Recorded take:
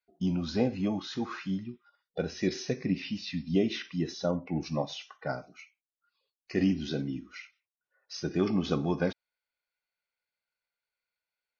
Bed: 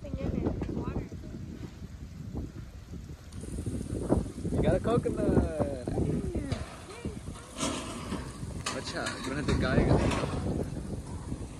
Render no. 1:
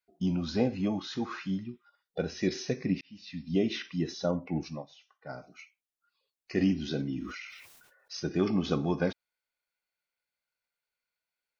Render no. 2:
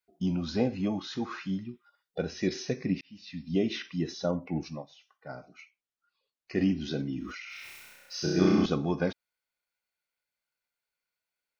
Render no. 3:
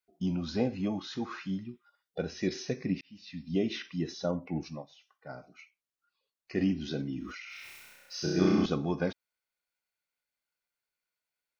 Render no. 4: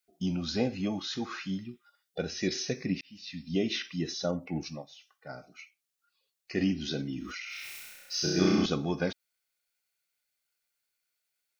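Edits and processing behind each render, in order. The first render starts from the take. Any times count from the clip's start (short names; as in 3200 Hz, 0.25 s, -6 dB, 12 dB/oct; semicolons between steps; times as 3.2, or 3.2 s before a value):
3.01–3.67 fade in; 4.56–5.51 dip -16 dB, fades 0.29 s; 7–8.2 sustainer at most 40 dB/s
5.28–6.81 air absorption 67 m; 7.44–8.66 flutter echo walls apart 5.6 m, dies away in 1.4 s
gain -2 dB
high shelf 2400 Hz +9 dB; notch 1000 Hz, Q 7.5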